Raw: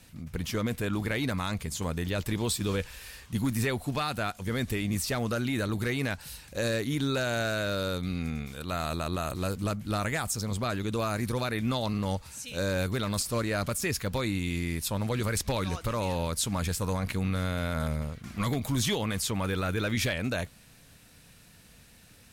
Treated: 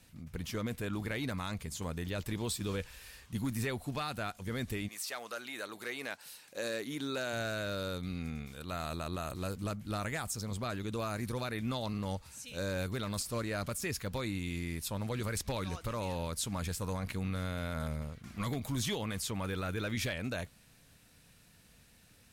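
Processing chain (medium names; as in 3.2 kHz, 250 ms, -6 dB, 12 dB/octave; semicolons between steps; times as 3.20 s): 4.87–7.32 s: high-pass 830 Hz -> 190 Hz 12 dB/octave; trim -6.5 dB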